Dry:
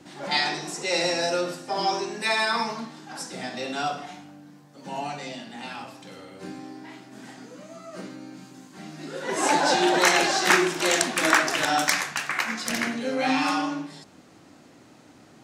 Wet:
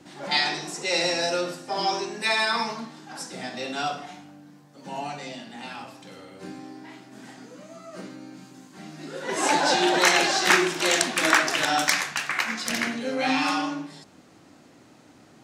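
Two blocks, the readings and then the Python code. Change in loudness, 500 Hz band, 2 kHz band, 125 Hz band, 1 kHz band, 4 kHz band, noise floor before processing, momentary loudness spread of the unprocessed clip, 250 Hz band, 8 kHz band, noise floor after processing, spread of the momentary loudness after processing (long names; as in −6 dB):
+0.5 dB, −1.0 dB, +0.5 dB, −1.0 dB, −0.5 dB, +1.5 dB, −52 dBFS, 22 LU, −1.0 dB, 0.0 dB, −53 dBFS, 21 LU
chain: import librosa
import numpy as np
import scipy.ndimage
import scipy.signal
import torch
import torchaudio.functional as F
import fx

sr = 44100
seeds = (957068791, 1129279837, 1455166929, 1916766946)

y = fx.dynamic_eq(x, sr, hz=3400.0, q=0.73, threshold_db=-36.0, ratio=4.0, max_db=3)
y = y * 10.0 ** (-1.0 / 20.0)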